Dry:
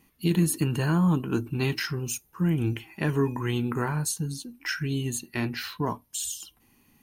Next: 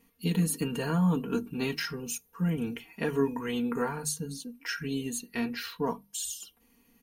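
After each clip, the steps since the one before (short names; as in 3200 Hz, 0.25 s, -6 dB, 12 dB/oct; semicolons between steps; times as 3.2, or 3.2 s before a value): bell 480 Hz +8 dB 0.21 oct; notches 50/100/150/200 Hz; comb 4.3 ms, depth 79%; gain -5 dB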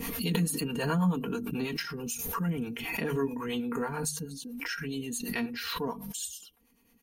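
harmonic tremolo 9.2 Hz, depth 70%, crossover 470 Hz; backwards sustainer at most 32 dB/s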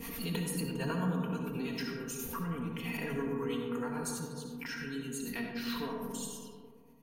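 reverb RT60 2.2 s, pre-delay 30 ms, DRR 1 dB; gain -7 dB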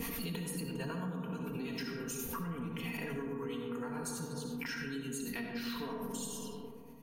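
compressor 6:1, threshold -44 dBFS, peak gain reduction 15.5 dB; gain +7 dB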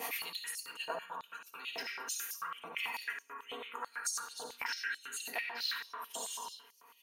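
stepped high-pass 9.1 Hz 690–5500 Hz; gain +1 dB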